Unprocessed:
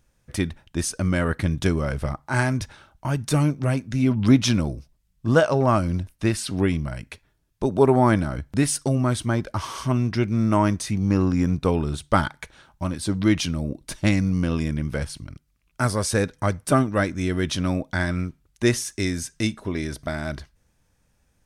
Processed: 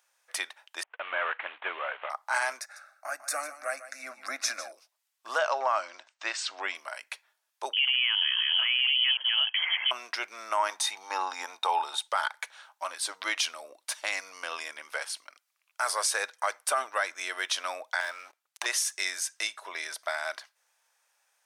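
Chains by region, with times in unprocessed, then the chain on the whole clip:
0:00.83–0:02.10: variable-slope delta modulation 16 kbit/s + noise gate −44 dBFS, range −19 dB
0:02.60–0:04.72: phaser with its sweep stopped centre 630 Hz, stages 8 + single-tap delay 149 ms −14 dB
0:05.38–0:06.75: Butterworth low-pass 8,000 Hz 72 dB per octave + high-shelf EQ 6,300 Hz −6 dB + notch filter 430 Hz, Q 9.2
0:07.73–0:09.91: delay that plays each chunk backwards 642 ms, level −2 dB + downward compressor 2 to 1, threshold −25 dBFS + voice inversion scrambler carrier 3,200 Hz
0:10.69–0:12.08: high-pass filter 100 Hz + mains-hum notches 50/100/150/200/250 Hz + hollow resonant body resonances 860/3,700 Hz, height 16 dB, ringing for 40 ms
0:18.00–0:18.66: low-shelf EQ 78 Hz +10.5 dB + leveller curve on the samples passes 3 + downward compressor, threshold −25 dBFS
whole clip: inverse Chebyshev high-pass filter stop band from 160 Hz, stop band 70 dB; brickwall limiter −17.5 dBFS; level +1.5 dB

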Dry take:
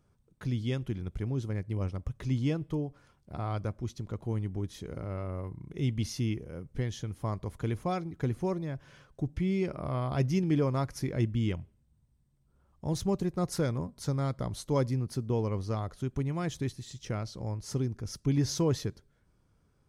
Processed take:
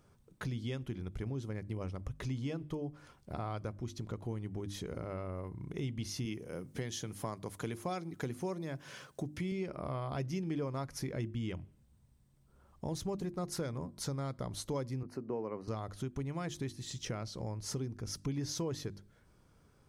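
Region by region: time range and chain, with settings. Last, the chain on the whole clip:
0:06.25–0:09.52: high-pass filter 130 Hz + high-shelf EQ 4,800 Hz +8.5 dB
0:15.03–0:15.68: Butterworth band-reject 3,400 Hz, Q 4.1 + three-way crossover with the lows and the highs turned down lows −19 dB, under 190 Hz, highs −16 dB, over 2,300 Hz
whole clip: low-shelf EQ 160 Hz −4.5 dB; mains-hum notches 50/100/150/200/250/300/350 Hz; downward compressor 3 to 1, threshold −45 dBFS; level +6.5 dB

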